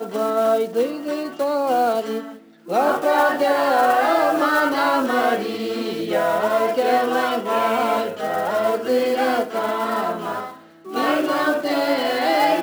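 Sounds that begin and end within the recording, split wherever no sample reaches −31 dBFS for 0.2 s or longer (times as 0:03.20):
0:02.68–0:10.53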